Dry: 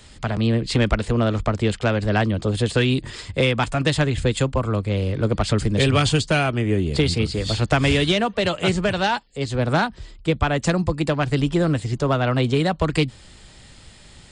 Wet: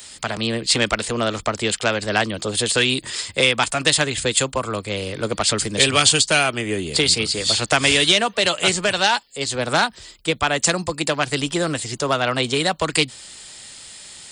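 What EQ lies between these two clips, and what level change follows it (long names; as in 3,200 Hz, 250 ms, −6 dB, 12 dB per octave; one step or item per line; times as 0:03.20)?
RIAA equalisation recording
+2.5 dB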